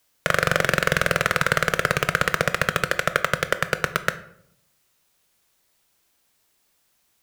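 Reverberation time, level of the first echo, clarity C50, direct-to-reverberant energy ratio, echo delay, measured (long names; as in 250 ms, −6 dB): 0.70 s, no echo audible, 15.0 dB, 11.0 dB, no echo audible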